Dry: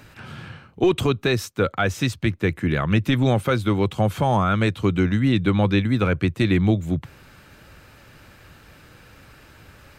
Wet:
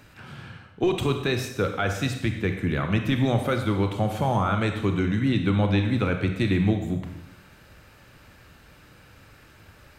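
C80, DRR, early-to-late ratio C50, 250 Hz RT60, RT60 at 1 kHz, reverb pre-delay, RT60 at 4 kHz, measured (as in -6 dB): 8.5 dB, 5.0 dB, 6.5 dB, 0.95 s, 0.90 s, 28 ms, 0.85 s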